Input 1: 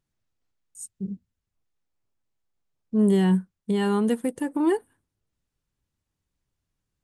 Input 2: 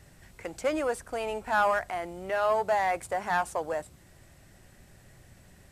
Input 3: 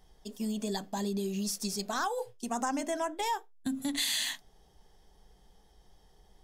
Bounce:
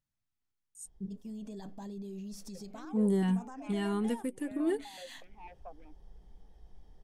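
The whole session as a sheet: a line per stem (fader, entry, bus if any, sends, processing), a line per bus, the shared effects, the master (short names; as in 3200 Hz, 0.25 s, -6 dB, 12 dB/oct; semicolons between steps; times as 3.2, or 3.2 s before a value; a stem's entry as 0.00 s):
-8.0 dB, 0.00 s, no bus, no send, LFO notch saw up 0.31 Hz 400–2800 Hz
-11.0 dB, 2.10 s, bus A, no send, self-modulated delay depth 0.28 ms; vowel sequencer 8 Hz
-4.5 dB, 0.85 s, bus A, no send, limiter -25 dBFS, peak gain reduction 5.5 dB; auto duck -9 dB, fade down 0.45 s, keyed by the first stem
bus A: 0.0 dB, tilt -2.5 dB/oct; limiter -37 dBFS, peak gain reduction 11.5 dB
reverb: off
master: dry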